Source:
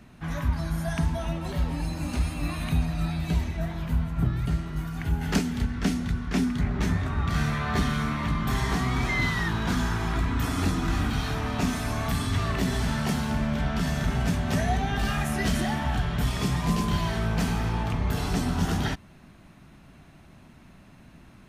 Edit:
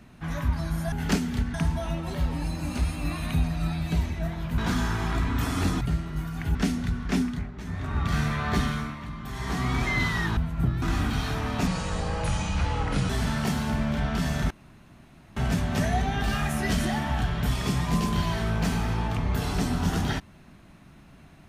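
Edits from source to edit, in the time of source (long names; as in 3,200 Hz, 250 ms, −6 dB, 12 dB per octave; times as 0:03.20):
0:03.96–0:04.41: swap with 0:09.59–0:10.82
0:05.15–0:05.77: move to 0:00.92
0:06.41–0:07.19: duck −12.5 dB, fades 0.33 s
0:07.85–0:08.90: duck −10 dB, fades 0.36 s
0:11.67–0:12.71: play speed 73%
0:14.12: splice in room tone 0.86 s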